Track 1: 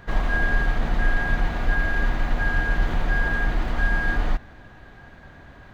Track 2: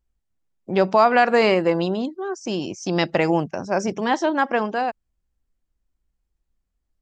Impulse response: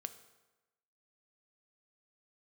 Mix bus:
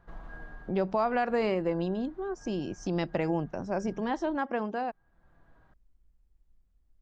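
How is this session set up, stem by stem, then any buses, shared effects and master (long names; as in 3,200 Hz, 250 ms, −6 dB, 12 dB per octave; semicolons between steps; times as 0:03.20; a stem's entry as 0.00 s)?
−15.5 dB, 0.00 s, send −5.5 dB, high shelf with overshoot 1,700 Hz −6.5 dB, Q 1.5; flanger 0.57 Hz, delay 5.8 ms, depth 1.1 ms, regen +61%; automatic ducking −9 dB, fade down 0.25 s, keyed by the second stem
−1.0 dB, 0.00 s, no send, spectral tilt −2 dB per octave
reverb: on, RT60 1.1 s, pre-delay 3 ms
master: downward compressor 1.5 to 1, threshold −46 dBFS, peak gain reduction 12.5 dB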